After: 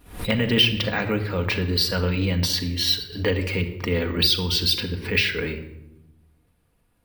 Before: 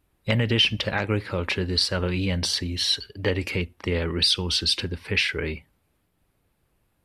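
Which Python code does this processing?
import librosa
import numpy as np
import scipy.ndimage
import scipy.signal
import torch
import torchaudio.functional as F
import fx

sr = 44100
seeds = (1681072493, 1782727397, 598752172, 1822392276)

y = fx.room_shoebox(x, sr, seeds[0], volume_m3=3400.0, walls='furnished', distance_m=1.8)
y = np.repeat(y[::2], 2)[:len(y)]
y = fx.pre_swell(y, sr, db_per_s=120.0)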